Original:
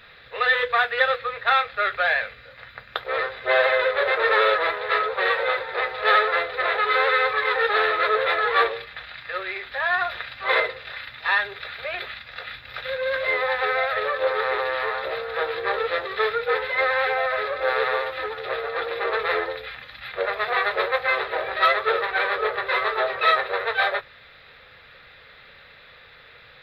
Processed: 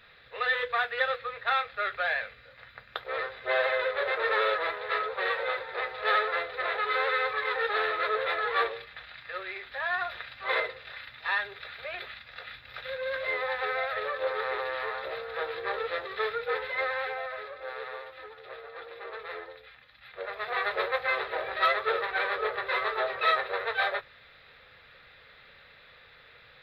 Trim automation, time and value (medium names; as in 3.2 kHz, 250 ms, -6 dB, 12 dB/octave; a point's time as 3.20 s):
16.75 s -7.5 dB
17.64 s -16 dB
19.95 s -16 dB
20.69 s -6 dB